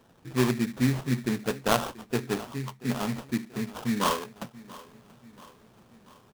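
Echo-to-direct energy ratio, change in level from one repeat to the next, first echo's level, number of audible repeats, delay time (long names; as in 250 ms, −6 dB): −18.5 dB, −5.5 dB, −20.0 dB, 3, 683 ms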